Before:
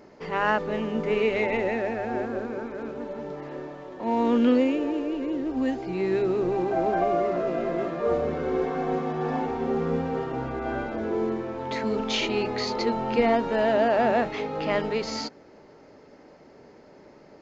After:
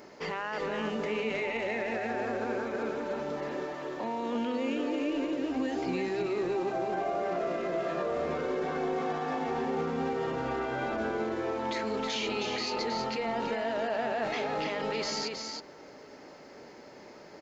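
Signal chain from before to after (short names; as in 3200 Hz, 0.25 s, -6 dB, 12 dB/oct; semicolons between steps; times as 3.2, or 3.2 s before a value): tilt +2 dB/oct; limiter -27.5 dBFS, peak gain reduction 17 dB; on a send: echo 0.318 s -4.5 dB; on the sum: gain +2 dB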